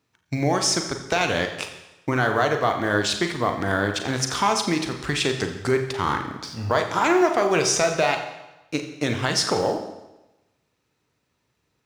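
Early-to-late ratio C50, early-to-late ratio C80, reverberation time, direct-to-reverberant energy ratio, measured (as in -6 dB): 8.0 dB, 10.0 dB, 1.0 s, 5.0 dB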